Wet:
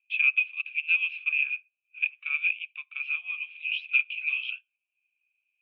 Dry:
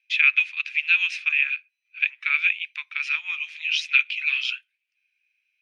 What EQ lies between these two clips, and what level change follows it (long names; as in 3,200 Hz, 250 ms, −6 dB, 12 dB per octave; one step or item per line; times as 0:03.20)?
formant filter a
transistor ladder low-pass 3,500 Hz, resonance 55%
+8.5 dB